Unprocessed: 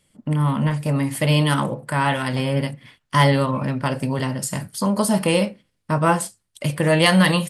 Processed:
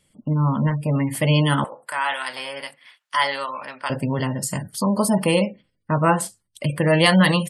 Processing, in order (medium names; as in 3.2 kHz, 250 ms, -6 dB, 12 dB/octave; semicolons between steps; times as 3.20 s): 1.64–3.90 s: high-pass 870 Hz 12 dB/octave; spectral gate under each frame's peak -30 dB strong